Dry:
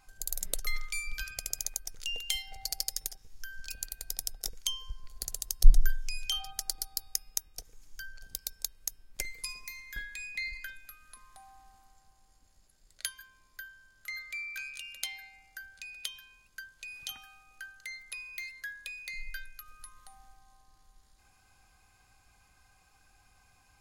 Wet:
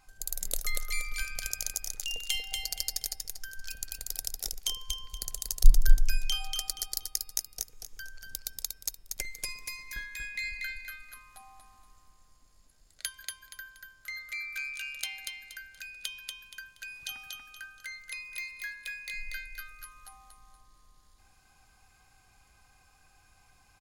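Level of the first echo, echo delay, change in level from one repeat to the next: −3.5 dB, 237 ms, −10.5 dB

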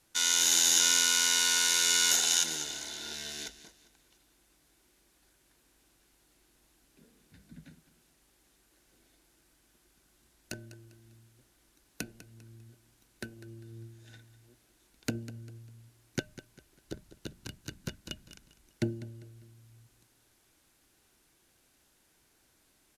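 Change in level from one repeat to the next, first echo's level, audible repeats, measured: −9.5 dB, −15.0 dB, 3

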